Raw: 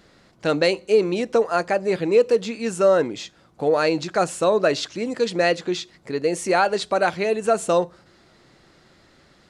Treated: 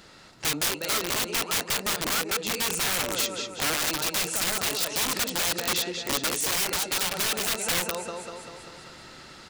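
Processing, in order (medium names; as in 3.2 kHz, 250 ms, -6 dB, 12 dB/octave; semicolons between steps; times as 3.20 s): compression 20:1, threshold -26 dBFS, peak gain reduction 15.5 dB; small resonant body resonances 910/1300/2700 Hz, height 8 dB, ringing for 30 ms; on a send: feedback delay 195 ms, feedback 58%, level -7.5 dB; on the sum: integer overflow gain 25.5 dB; gain riding within 4 dB 0.5 s; treble shelf 2.2 kHz +8.5 dB; transformer saturation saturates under 130 Hz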